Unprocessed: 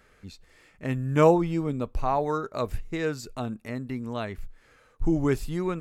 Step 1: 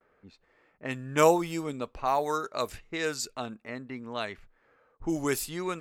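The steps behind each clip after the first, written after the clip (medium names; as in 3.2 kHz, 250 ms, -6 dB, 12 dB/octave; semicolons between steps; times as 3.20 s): RIAA curve recording; level-controlled noise filter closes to 870 Hz, open at -25.5 dBFS; gate with hold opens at -58 dBFS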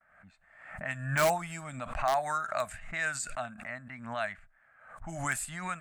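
FFT filter 200 Hz 0 dB, 430 Hz -26 dB, 650 Hz +7 dB, 970 Hz -2 dB, 1.6 kHz +10 dB, 3.3 kHz -4 dB, 5.5 kHz -9 dB, 8.3 kHz +8 dB, 15 kHz -18 dB; in parallel at -4.5 dB: integer overflow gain 14 dB; on the sum: swell ahead of each attack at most 72 dB/s; trim -8 dB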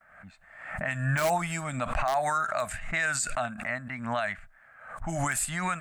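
peak limiter -26.5 dBFS, peak gain reduction 11.5 dB; trim +8 dB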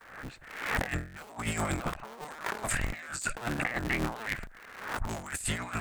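cycle switcher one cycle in 3, inverted; compressor with a negative ratio -35 dBFS, ratio -0.5; trim +1.5 dB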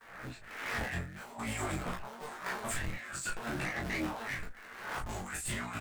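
chorus voices 6, 0.64 Hz, delay 13 ms, depth 4.4 ms; saturation -33 dBFS, distortion -11 dB; on a send: early reflections 22 ms -3.5 dB, 38 ms -6.5 dB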